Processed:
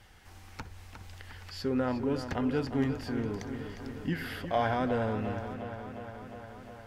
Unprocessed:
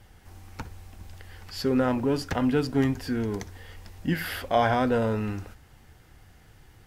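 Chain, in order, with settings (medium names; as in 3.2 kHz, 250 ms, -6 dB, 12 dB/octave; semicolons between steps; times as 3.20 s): treble shelf 7.8 kHz -10 dB; on a send: filtered feedback delay 356 ms, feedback 68%, low-pass 4.9 kHz, level -9.5 dB; on the sum: tape noise reduction on one side only encoder only; trim -6 dB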